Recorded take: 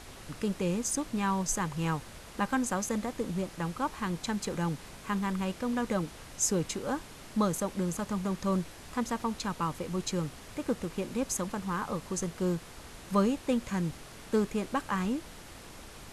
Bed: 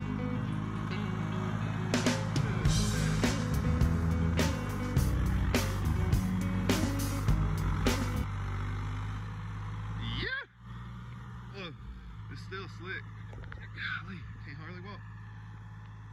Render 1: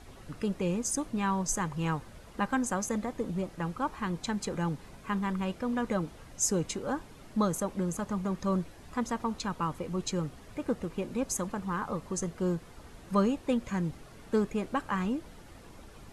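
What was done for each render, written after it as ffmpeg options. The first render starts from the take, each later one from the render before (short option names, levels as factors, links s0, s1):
-af "afftdn=nr=9:nf=-48"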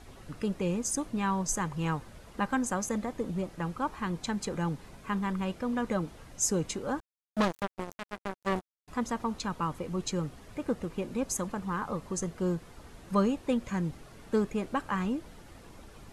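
-filter_complex "[0:a]asettb=1/sr,asplit=3[s0][s1][s2];[s0]atrim=end=7.004[s3];[s1]atrim=start=7:end=8.88,asetpts=PTS-STARTPTS,afade=t=in:d=0.004:c=qsin,afade=t=out:st=1.876:d=0.004:c=qsin,acrusher=bits=3:mix=0:aa=0.5[s4];[s2]atrim=start=8.876[s5];[s3][s4]acrossfade=d=0.004:c1=hsin:c2=qsin[s6];[s6][s5]acrossfade=d=0.004:c1=qsin:c2=hsin"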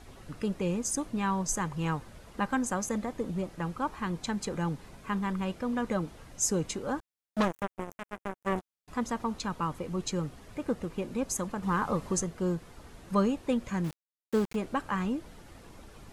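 -filter_complex "[0:a]asettb=1/sr,asplit=3[s0][s1][s2];[s0]atrim=end=7.434[s3];[s1]atrim=start=7.43:end=8.58,asetpts=PTS-STARTPTS,afade=t=in:d=0.004:c=qsin,afade=t=out:st=1.146:d=0.004:c=qsin,equalizer=f=4400:w=1.9:g=-12.5[s4];[s2]atrim=start=8.576[s5];[s3][s4]acrossfade=d=0.004:c1=hsin:c2=qsin[s6];[s6][s5]acrossfade=d=0.004:c1=qsin:c2=hsin,asettb=1/sr,asplit=3[s7][s8][s9];[s7]atrim=end=13.844[s10];[s8]atrim=start=13.84:end=14.56,asetpts=PTS-STARTPTS,afade=t=in:d=0.004:c=qsin,afade=t=out:st=0.716:d=0.004:c=qsin,aeval=exprs='val(0)*gte(abs(val(0)),0.0141)':c=same[s11];[s9]atrim=start=14.556[s12];[s10][s11]acrossfade=d=0.004:c1=hsin:c2=qsin[s13];[s13][s12]acrossfade=d=0.004:c1=qsin:c2=hsin,asplit=3[s14][s15][s16];[s14]atrim=end=11.632[s17];[s15]atrim=start=11.628:end=12.222,asetpts=PTS-STARTPTS,volume=1.68[s18];[s16]atrim=start=12.218[s19];[s17][s18]acrossfade=d=0.004:c1=hsin:c2=hsin[s20];[s20][s19]acrossfade=d=0.004:c1=hsin:c2=hsin"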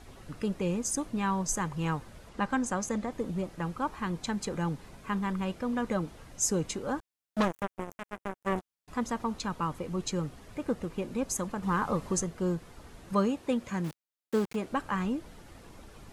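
-filter_complex "[0:a]asettb=1/sr,asplit=3[s0][s1][s2];[s0]atrim=end=2.294[s3];[s1]atrim=start=2.29:end=3.12,asetpts=PTS-STARTPTS,afade=t=in:d=0.004:c=qsin,afade=t=out:st=0.826:d=0.004:c=qsin,lowpass=9000[s4];[s2]atrim=start=3.116[s5];[s3][s4]acrossfade=d=0.004:c1=hsin:c2=qsin[s6];[s6][s5]acrossfade=d=0.004:c1=qsin:c2=hsin,asettb=1/sr,asplit=3[s7][s8][s9];[s7]atrim=end=13.134[s10];[s8]atrim=start=13.13:end=14.71,asetpts=PTS-STARTPTS,afade=t=in:d=0.004:c=qsin,afade=t=out:st=1.576:d=0.004:c=qsin,highpass=f=120:p=1[s11];[s9]atrim=start=14.706[s12];[s10][s11]acrossfade=d=0.004:c1=hsin:c2=qsin[s13];[s13][s12]acrossfade=d=0.004:c1=qsin:c2=hsin"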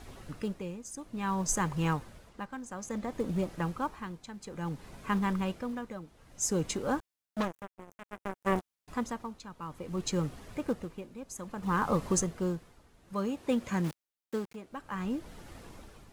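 -filter_complex "[0:a]asplit=2[s0][s1];[s1]acrusher=bits=3:mode=log:mix=0:aa=0.000001,volume=0.251[s2];[s0][s2]amix=inputs=2:normalize=0,tremolo=f=0.58:d=0.81"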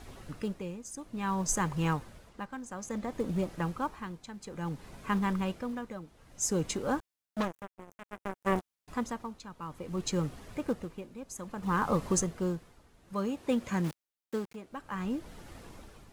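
-af anull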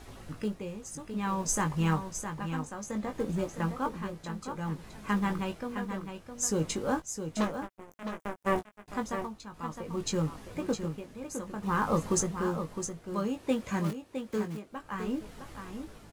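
-filter_complex "[0:a]asplit=2[s0][s1];[s1]adelay=19,volume=0.473[s2];[s0][s2]amix=inputs=2:normalize=0,aecho=1:1:661:0.398"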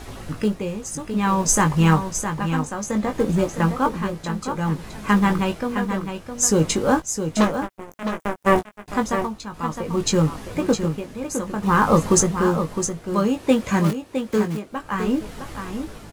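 -af "volume=3.76"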